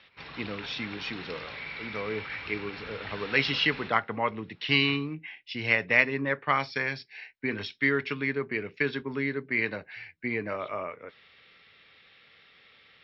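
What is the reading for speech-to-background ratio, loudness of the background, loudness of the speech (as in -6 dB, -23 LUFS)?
10.5 dB, -39.5 LUFS, -29.0 LUFS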